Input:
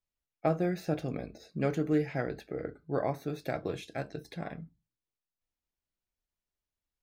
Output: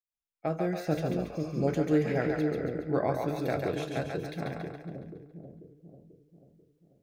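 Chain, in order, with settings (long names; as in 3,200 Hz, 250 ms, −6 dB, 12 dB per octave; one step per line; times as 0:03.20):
fade in at the beginning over 0.90 s
healed spectral selection 0:01.15–0:01.66, 1,000–4,100 Hz before
echo with a time of its own for lows and highs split 490 Hz, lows 489 ms, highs 139 ms, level −3.5 dB
level +2 dB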